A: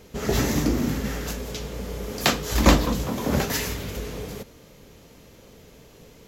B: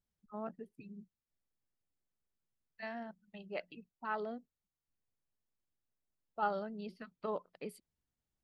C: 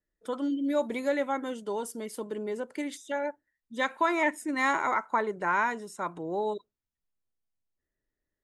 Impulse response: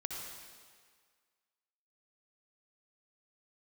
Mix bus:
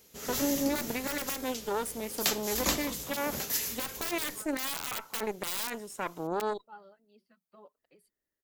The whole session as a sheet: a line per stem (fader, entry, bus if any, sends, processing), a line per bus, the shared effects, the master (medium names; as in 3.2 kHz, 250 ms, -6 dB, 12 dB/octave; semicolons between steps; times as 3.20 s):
-1.0 dB, 0.00 s, no bus, no send, pre-emphasis filter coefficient 0.8
-13.5 dB, 0.30 s, bus A, no send, cancelling through-zero flanger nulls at 0.42 Hz, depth 7.6 ms
+2.0 dB, 0.00 s, bus A, no send, Chebyshev shaper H 4 -10 dB, 5 -37 dB, 7 -24 dB, 8 -38 dB, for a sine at -14.5 dBFS; integer overflow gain 16 dB
bus A: 0.0 dB, treble shelf 10 kHz +9.5 dB; peak limiter -19.5 dBFS, peak gain reduction 14.5 dB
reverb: none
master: bass shelf 120 Hz -9.5 dB